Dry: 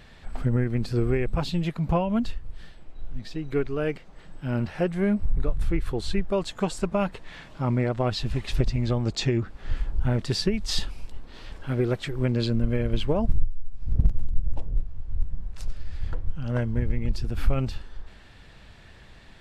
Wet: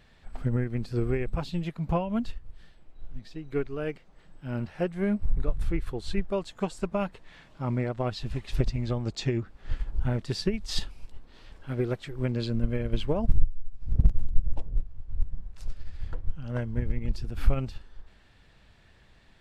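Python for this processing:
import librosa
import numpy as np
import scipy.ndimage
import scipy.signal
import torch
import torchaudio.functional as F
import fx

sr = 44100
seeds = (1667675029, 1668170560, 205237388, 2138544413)

y = fx.upward_expand(x, sr, threshold_db=-32.0, expansion=1.5)
y = y * librosa.db_to_amplitude(2.0)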